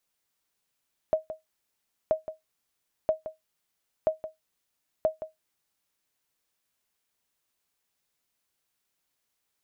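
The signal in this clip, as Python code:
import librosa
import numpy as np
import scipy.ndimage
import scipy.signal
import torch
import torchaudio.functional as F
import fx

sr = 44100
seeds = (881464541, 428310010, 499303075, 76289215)

y = fx.sonar_ping(sr, hz=631.0, decay_s=0.16, every_s=0.98, pings=5, echo_s=0.17, echo_db=-12.5, level_db=-15.0)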